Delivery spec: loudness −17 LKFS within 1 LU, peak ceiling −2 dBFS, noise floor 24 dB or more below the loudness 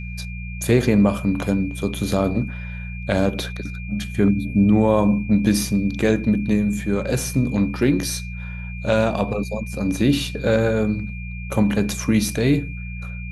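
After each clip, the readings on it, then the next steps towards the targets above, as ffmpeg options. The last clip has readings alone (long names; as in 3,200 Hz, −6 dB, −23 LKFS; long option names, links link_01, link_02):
mains hum 60 Hz; hum harmonics up to 180 Hz; level of the hum −29 dBFS; interfering tone 2,400 Hz; level of the tone −37 dBFS; integrated loudness −21.0 LKFS; sample peak −3.0 dBFS; target loudness −17.0 LKFS
→ -af "bandreject=frequency=60:width_type=h:width=4,bandreject=frequency=120:width_type=h:width=4,bandreject=frequency=180:width_type=h:width=4"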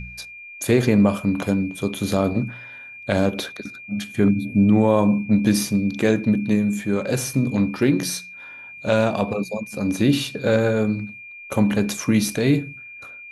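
mains hum none found; interfering tone 2,400 Hz; level of the tone −37 dBFS
→ -af "bandreject=frequency=2400:width=30"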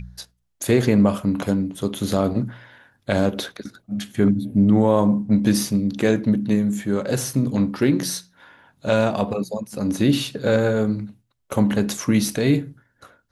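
interfering tone none found; integrated loudness −21.0 LKFS; sample peak −4.0 dBFS; target loudness −17.0 LKFS
→ -af "volume=4dB,alimiter=limit=-2dB:level=0:latency=1"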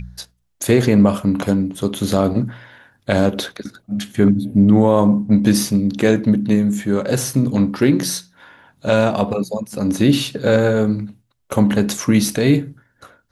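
integrated loudness −17.0 LKFS; sample peak −2.0 dBFS; background noise floor −65 dBFS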